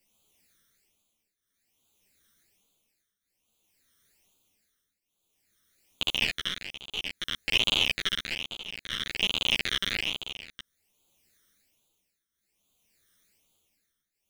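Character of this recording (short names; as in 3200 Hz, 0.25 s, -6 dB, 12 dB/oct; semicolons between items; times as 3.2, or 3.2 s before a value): a quantiser's noise floor 12-bit, dither triangular; phasing stages 12, 1.2 Hz, lowest notch 800–1800 Hz; tremolo triangle 0.55 Hz, depth 90%; a shimmering, thickened sound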